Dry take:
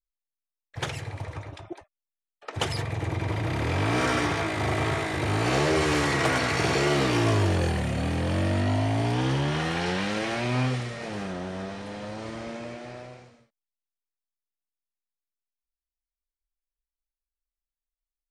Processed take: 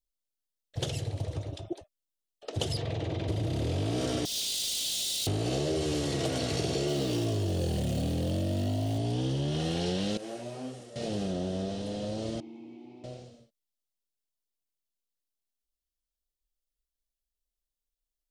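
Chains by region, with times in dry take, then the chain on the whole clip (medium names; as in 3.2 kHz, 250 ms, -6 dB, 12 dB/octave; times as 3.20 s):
2.77–3.28 s: low-pass 3.8 kHz + bass shelf 380 Hz -8.5 dB + level flattener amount 100%
4.25–5.27 s: inverse Chebyshev high-pass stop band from 610 Hz, stop band 80 dB + waveshaping leveller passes 5
6.88–8.98 s: jump at every zero crossing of -32.5 dBFS + high-pass 63 Hz
10.17–10.96 s: high-pass 800 Hz 6 dB/octave + peaking EQ 3.7 kHz -14 dB 1.9 oct + detune thickener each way 28 cents
12.40–13.04 s: vowel filter u + level flattener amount 50%
whole clip: high-order bell 1.4 kHz -14.5 dB; band-stop 2.4 kHz, Q 17; compression, threshold -30 dBFS; trim +3 dB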